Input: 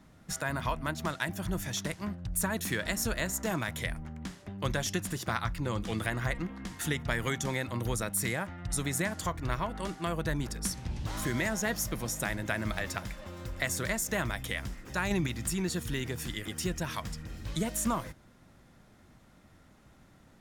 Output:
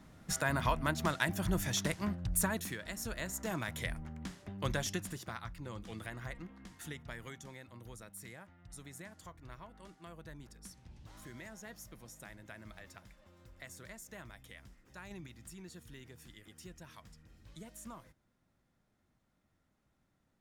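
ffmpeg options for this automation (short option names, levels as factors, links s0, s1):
-af "volume=2.82,afade=t=out:st=2.32:d=0.46:silence=0.237137,afade=t=in:st=2.78:d=1.16:silence=0.375837,afade=t=out:st=4.78:d=0.55:silence=0.375837,afade=t=out:st=6.65:d=0.91:silence=0.473151"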